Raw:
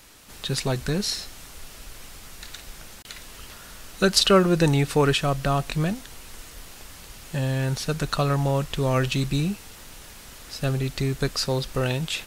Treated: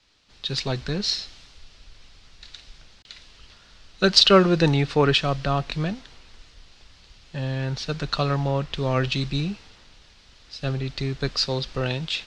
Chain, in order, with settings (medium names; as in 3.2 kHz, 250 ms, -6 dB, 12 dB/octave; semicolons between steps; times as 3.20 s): four-pole ladder low-pass 5.5 kHz, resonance 35%; three bands expanded up and down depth 40%; trim +6 dB